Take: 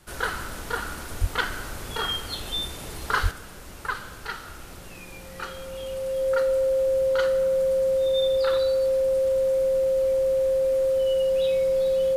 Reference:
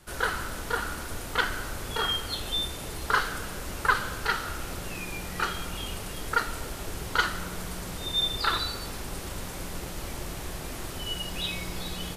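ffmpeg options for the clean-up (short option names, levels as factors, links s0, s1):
-filter_complex "[0:a]bandreject=f=530:w=30,asplit=3[s0][s1][s2];[s0]afade=t=out:st=1.2:d=0.02[s3];[s1]highpass=f=140:w=0.5412,highpass=f=140:w=1.3066,afade=t=in:st=1.2:d=0.02,afade=t=out:st=1.32:d=0.02[s4];[s2]afade=t=in:st=1.32:d=0.02[s5];[s3][s4][s5]amix=inputs=3:normalize=0,asplit=3[s6][s7][s8];[s6]afade=t=out:st=3.22:d=0.02[s9];[s7]highpass=f=140:w=0.5412,highpass=f=140:w=1.3066,afade=t=in:st=3.22:d=0.02,afade=t=out:st=3.34:d=0.02[s10];[s8]afade=t=in:st=3.34:d=0.02[s11];[s9][s10][s11]amix=inputs=3:normalize=0,asetnsamples=n=441:p=0,asendcmd='3.31 volume volume 6.5dB',volume=1"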